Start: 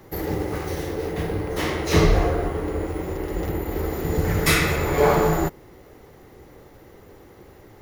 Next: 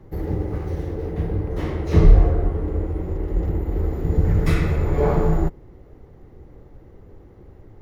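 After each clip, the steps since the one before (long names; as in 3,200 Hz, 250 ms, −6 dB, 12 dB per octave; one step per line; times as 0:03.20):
spectral tilt −3.5 dB per octave
level −7 dB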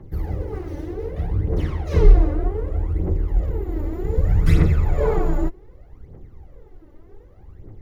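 phase shifter 0.65 Hz, delay 3.5 ms, feedback 67%
level −4 dB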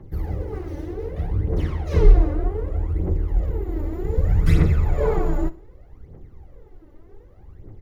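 repeating echo 64 ms, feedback 37%, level −19.5 dB
level −1 dB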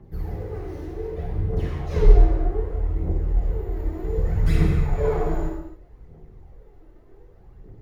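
convolution reverb, pre-delay 3 ms, DRR −2 dB
level −5.5 dB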